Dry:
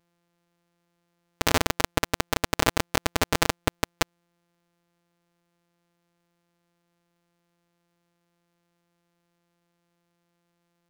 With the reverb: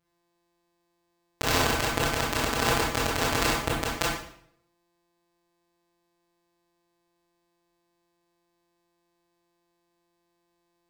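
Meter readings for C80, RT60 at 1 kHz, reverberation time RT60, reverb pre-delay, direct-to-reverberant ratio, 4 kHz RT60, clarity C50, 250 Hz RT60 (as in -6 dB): 6.0 dB, 0.60 s, 0.65 s, 21 ms, -5.5 dB, 0.55 s, 1.0 dB, 0.65 s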